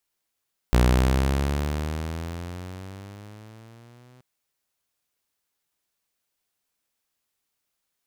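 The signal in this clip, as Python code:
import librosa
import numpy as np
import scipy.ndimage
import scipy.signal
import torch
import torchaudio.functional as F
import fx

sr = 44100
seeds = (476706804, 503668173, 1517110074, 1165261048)

y = fx.riser_tone(sr, length_s=3.48, level_db=-12, wave='saw', hz=60.1, rise_st=13.0, swell_db=-36.0)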